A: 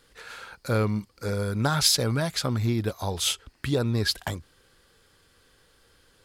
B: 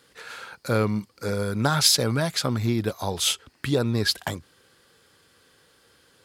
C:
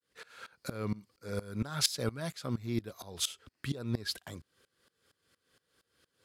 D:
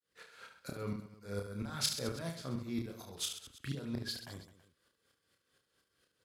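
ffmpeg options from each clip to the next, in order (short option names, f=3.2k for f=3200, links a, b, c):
-af "highpass=110,volume=2.5dB"
-af "agate=range=-33dB:threshold=-56dB:ratio=3:detection=peak,equalizer=f=850:t=o:w=0.27:g=-5,aeval=exprs='val(0)*pow(10,-22*if(lt(mod(-4.3*n/s,1),2*abs(-4.3)/1000),1-mod(-4.3*n/s,1)/(2*abs(-4.3)/1000),(mod(-4.3*n/s,1)-2*abs(-4.3)/1000)/(1-2*abs(-4.3)/1000))/20)':c=same,volume=-4dB"
-af "aecho=1:1:30|72|130.8|213.1|328.4:0.631|0.398|0.251|0.158|0.1,volume=-6dB"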